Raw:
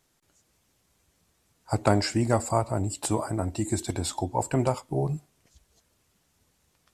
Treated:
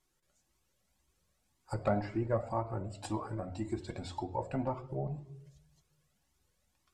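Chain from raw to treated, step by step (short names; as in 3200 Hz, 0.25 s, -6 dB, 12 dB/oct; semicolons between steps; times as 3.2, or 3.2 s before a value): treble ducked by the level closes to 1700 Hz, closed at -21.5 dBFS; on a send at -5 dB: reverb RT60 0.75 s, pre-delay 4 ms; on the sum: cascading flanger rising 1.9 Hz; gain -5.5 dB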